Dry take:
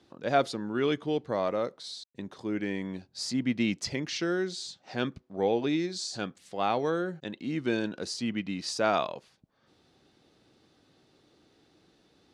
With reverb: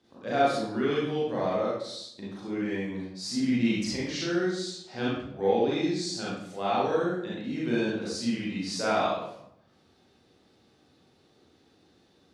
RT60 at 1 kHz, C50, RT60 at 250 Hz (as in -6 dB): 0.75 s, -2.0 dB, 0.95 s